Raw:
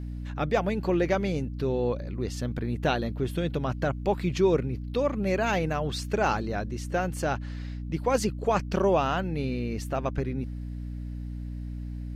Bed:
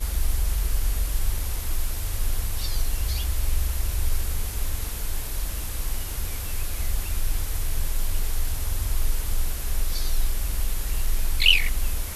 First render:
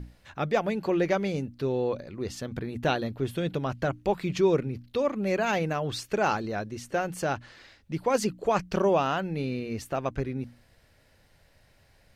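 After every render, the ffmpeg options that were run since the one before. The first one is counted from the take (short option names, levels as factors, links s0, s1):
-af "bandreject=f=60:t=h:w=6,bandreject=f=120:t=h:w=6,bandreject=f=180:t=h:w=6,bandreject=f=240:t=h:w=6,bandreject=f=300:t=h:w=6"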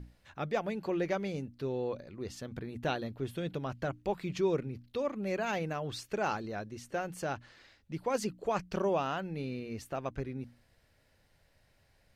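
-af "volume=0.447"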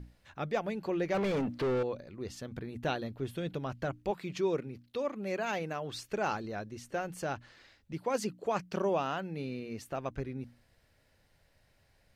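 -filter_complex "[0:a]asettb=1/sr,asplit=3[s0][s1][s2];[s0]atrim=end=1.144[s3];[s1]atrim=start=1.14:end=1.83,asetpts=PTS-STARTPTS,afade=t=in:d=0.004:c=qsin,afade=t=out:st=0.686:d=0.004:c=qsin,asplit=2[s4][s5];[s5]highpass=f=720:p=1,volume=39.8,asoftclip=type=tanh:threshold=0.0708[s6];[s4][s6]amix=inputs=2:normalize=0,lowpass=f=1200:p=1,volume=0.501[s7];[s2]atrim=start=1.826[s8];[s3][s7]acrossfade=d=0.004:c1=hsin:c2=qsin[s9];[s9][s8]acrossfade=d=0.004:c1=qsin:c2=hsin,asettb=1/sr,asplit=3[s10][s11][s12];[s10]atrim=end=4.114[s13];[s11]atrim=start=4.11:end=5.95,asetpts=PTS-STARTPTS,afade=t=in:d=0.004:c=qsin,afade=t=out:st=1.836:d=0.004:c=qsin,highpass=f=190:p=1[s14];[s12]atrim=start=5.946[s15];[s13][s14]acrossfade=d=0.004:c1=hsin:c2=qsin[s16];[s16][s15]acrossfade=d=0.004:c1=qsin:c2=hsin,asettb=1/sr,asplit=3[s17][s18][s19];[s17]atrim=end=7.934[s20];[s18]atrim=start=7.93:end=9.88,asetpts=PTS-STARTPTS,afade=t=in:d=0.004:c=qsin,afade=t=out:st=1.946:d=0.004:c=qsin,highpass=110[s21];[s19]atrim=start=9.876[s22];[s20][s21]acrossfade=d=0.004:c1=hsin:c2=qsin[s23];[s23][s22]acrossfade=d=0.004:c1=qsin:c2=hsin"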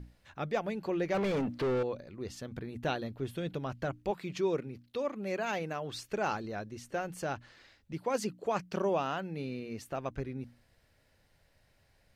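-af anull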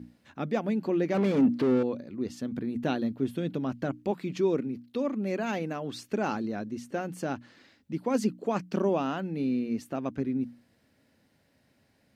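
-af "highpass=98,equalizer=f=250:t=o:w=0.88:g=13.5"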